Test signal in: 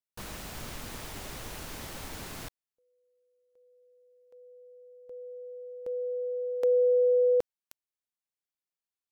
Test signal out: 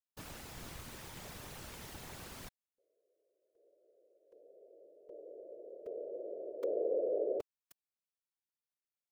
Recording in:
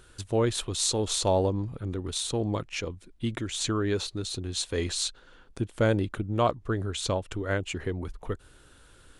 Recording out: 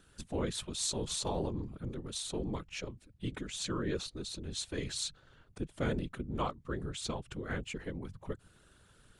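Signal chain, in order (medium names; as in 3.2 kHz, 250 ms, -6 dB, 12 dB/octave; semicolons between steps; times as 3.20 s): dynamic bell 620 Hz, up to -8 dB, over -42 dBFS, Q 2.4; whisper effect; trim -7.5 dB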